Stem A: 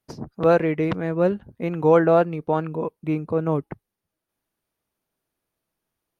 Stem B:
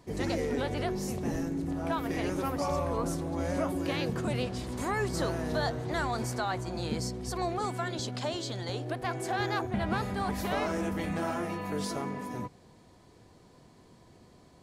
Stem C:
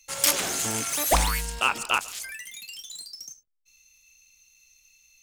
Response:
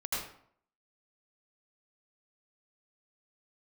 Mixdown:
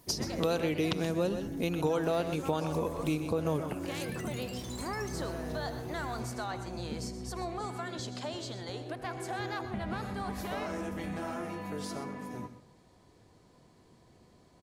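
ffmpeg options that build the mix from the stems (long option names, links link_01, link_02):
-filter_complex "[0:a]acompressor=threshold=-18dB:ratio=6,aexciter=amount=5.9:drive=7.6:freq=2900,volume=0.5dB,asplit=3[link_01][link_02][link_03];[link_02]volume=-11dB[link_04];[1:a]volume=-5dB,asplit=3[link_05][link_06][link_07];[link_06]volume=-16.5dB[link_08];[link_07]volume=-13.5dB[link_09];[2:a]acompressor=threshold=-29dB:ratio=6,adelay=1800,volume=-7.5dB[link_10];[link_03]apad=whole_len=309621[link_11];[link_10][link_11]sidechaincompress=threshold=-35dB:ratio=8:attack=6.6:release=342[link_12];[3:a]atrim=start_sample=2205[link_13];[link_08][link_13]afir=irnorm=-1:irlink=0[link_14];[link_04][link_09]amix=inputs=2:normalize=0,aecho=0:1:126:1[link_15];[link_01][link_05][link_12][link_14][link_15]amix=inputs=5:normalize=0,acompressor=threshold=-33dB:ratio=2"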